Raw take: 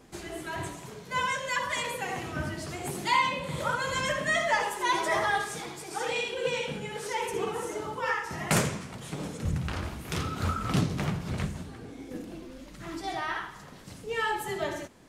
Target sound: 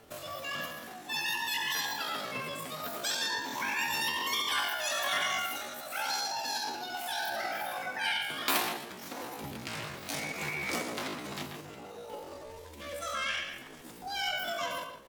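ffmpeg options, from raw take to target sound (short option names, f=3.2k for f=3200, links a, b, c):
-filter_complex "[0:a]acrossover=split=320|3000[a][b][c];[a]acompressor=threshold=-52dB:ratio=2[d];[d][b][c]amix=inputs=3:normalize=0,asplit=2[e][f];[f]adelay=128,lowpass=f=2.1k:p=1,volume=-5.5dB,asplit=2[g][h];[h]adelay=128,lowpass=f=2.1k:p=1,volume=0.2,asplit=2[i][j];[j]adelay=128,lowpass=f=2.1k:p=1,volume=0.2[k];[e][g][i][k]amix=inputs=4:normalize=0,afftfilt=real='re*lt(hypot(re,im),0.282)':imag='im*lt(hypot(re,im),0.282)':win_size=1024:overlap=0.75,asetrate=76340,aresample=44100,atempo=0.577676,volume=-1dB"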